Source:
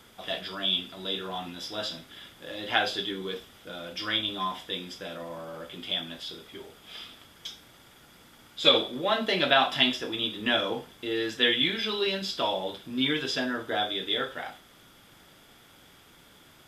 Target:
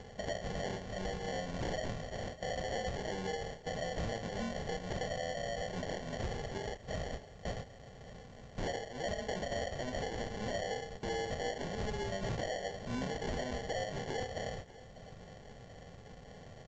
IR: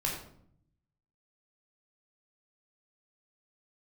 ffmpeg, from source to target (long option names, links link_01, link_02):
-filter_complex "[0:a]bandreject=frequency=76.27:width_type=h:width=4,bandreject=frequency=152.54:width_type=h:width=4,bandreject=frequency=228.81:width_type=h:width=4,bandreject=frequency=305.08:width_type=h:width=4,bandreject=frequency=381.35:width_type=h:width=4,bandreject=frequency=457.62:width_type=h:width=4,bandreject=frequency=533.89:width_type=h:width=4,bandreject=frequency=610.16:width_type=h:width=4,bandreject=frequency=686.43:width_type=h:width=4,bandreject=frequency=762.7:width_type=h:width=4,bandreject=frequency=838.97:width_type=h:width=4,bandreject=frequency=915.24:width_type=h:width=4,bandreject=frequency=991.51:width_type=h:width=4,bandreject=frequency=1067.78:width_type=h:width=4,bandreject=frequency=1144.05:width_type=h:width=4,bandreject=frequency=1220.32:width_type=h:width=4,bandreject=frequency=1296.59:width_type=h:width=4,bandreject=frequency=1372.86:width_type=h:width=4,bandreject=frequency=1449.13:width_type=h:width=4,bandreject=frequency=1525.4:width_type=h:width=4,bandreject=frequency=1601.67:width_type=h:width=4,bandreject=frequency=1677.94:width_type=h:width=4,bandreject=frequency=1754.21:width_type=h:width=4,bandreject=frequency=1830.48:width_type=h:width=4,bandreject=frequency=1906.75:width_type=h:width=4,bandreject=frequency=1983.02:width_type=h:width=4,bandreject=frequency=2059.29:width_type=h:width=4,bandreject=frequency=2135.56:width_type=h:width=4,bandreject=frequency=2211.83:width_type=h:width=4,bandreject=frequency=2288.1:width_type=h:width=4,bandreject=frequency=2364.37:width_type=h:width=4,agate=range=-17dB:threshold=-49dB:ratio=16:detection=peak,equalizer=frequency=470:width=3.9:gain=5.5,aecho=1:1:1.6:0.74,acrossover=split=670|1300[link_01][link_02][link_03];[link_01]acompressor=mode=upward:threshold=-34dB:ratio=2.5[link_04];[link_03]alimiter=limit=-18dB:level=0:latency=1:release=220[link_05];[link_04][link_02][link_05]amix=inputs=3:normalize=0,acompressor=threshold=-37dB:ratio=4,aexciter=amount=7.4:drive=5.1:freq=5700,acrusher=samples=35:mix=1:aa=0.000001,aeval=exprs='0.0266*(abs(mod(val(0)/0.0266+3,4)-2)-1)':channel_layout=same,aecho=1:1:599:0.126,volume=1dB" -ar 16000 -c:a pcm_alaw